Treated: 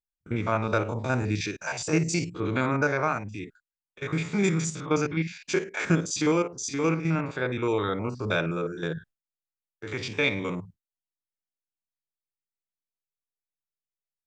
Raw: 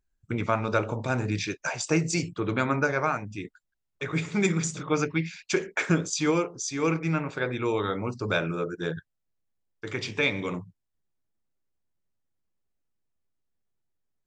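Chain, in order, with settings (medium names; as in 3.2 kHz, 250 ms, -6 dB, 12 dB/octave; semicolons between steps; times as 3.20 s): spectrogram pixelated in time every 50 ms; gate with hold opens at -42 dBFS; trim +1.5 dB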